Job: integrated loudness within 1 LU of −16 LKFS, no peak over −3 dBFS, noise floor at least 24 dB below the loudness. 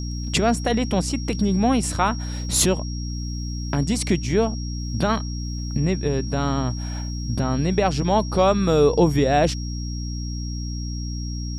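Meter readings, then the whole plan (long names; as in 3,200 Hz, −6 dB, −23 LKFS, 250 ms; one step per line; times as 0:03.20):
mains hum 60 Hz; hum harmonics up to 300 Hz; level of the hum −26 dBFS; interfering tone 5,600 Hz; level of the tone −37 dBFS; integrated loudness −23.0 LKFS; sample peak −5.0 dBFS; target loudness −16.0 LKFS
→ hum removal 60 Hz, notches 5
notch filter 5,600 Hz, Q 30
level +7 dB
brickwall limiter −3 dBFS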